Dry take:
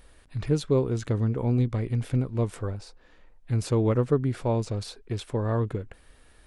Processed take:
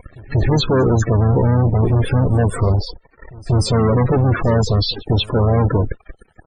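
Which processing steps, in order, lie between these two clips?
fuzz box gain 40 dB, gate -49 dBFS; harmoniser -5 st -9 dB; loudest bins only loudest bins 32; reverse echo 0.188 s -22.5 dB

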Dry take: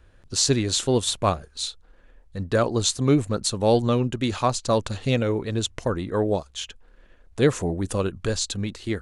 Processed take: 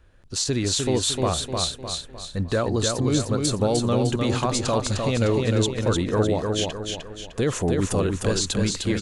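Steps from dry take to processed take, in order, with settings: AGC gain up to 6.5 dB; limiter -13 dBFS, peak gain reduction 10.5 dB; on a send: feedback echo 0.304 s, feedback 43%, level -4 dB; on the sum: gain -1.5 dB

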